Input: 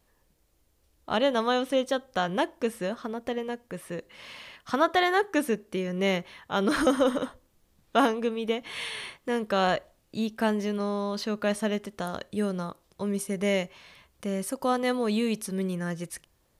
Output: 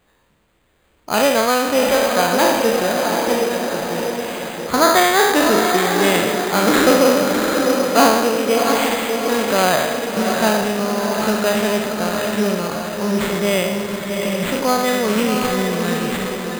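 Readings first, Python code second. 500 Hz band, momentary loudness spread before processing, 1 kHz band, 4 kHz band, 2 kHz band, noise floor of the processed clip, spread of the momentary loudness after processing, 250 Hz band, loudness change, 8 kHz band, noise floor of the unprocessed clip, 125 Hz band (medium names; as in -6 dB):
+11.5 dB, 13 LU, +12.0 dB, +13.0 dB, +12.5 dB, -59 dBFS, 9 LU, +9.5 dB, +11.5 dB, +18.0 dB, -68 dBFS, +9.0 dB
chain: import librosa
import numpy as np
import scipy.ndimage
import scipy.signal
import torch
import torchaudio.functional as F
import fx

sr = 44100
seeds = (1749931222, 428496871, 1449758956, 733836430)

p1 = fx.spec_trails(x, sr, decay_s=1.12)
p2 = fx.low_shelf(p1, sr, hz=65.0, db=-11.5)
p3 = p2 + fx.echo_diffused(p2, sr, ms=723, feedback_pct=51, wet_db=-4, dry=0)
p4 = np.repeat(p3[::8], 8)[:len(p3)]
y = p4 * librosa.db_to_amplitude(7.0)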